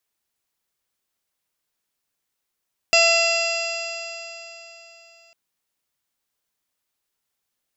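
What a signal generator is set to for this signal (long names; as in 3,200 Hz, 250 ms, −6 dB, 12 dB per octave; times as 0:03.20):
stiff-string partials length 2.40 s, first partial 667 Hz, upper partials −9.5/−11/3/−14/−12.5/0/−10/−13/−8.5 dB, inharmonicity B 0.002, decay 3.60 s, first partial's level −18 dB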